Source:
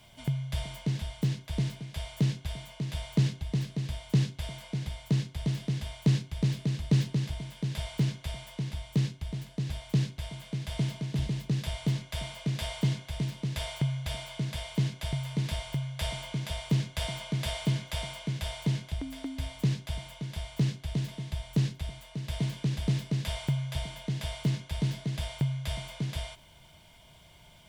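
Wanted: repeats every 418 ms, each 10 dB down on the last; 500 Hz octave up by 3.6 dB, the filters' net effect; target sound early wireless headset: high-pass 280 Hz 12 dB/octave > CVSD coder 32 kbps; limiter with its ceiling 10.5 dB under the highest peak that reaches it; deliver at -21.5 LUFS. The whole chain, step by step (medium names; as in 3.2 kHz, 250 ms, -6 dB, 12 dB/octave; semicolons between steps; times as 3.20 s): peaking EQ 500 Hz +5.5 dB; peak limiter -24 dBFS; high-pass 280 Hz 12 dB/octave; feedback delay 418 ms, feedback 32%, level -10 dB; CVSD coder 32 kbps; trim +19 dB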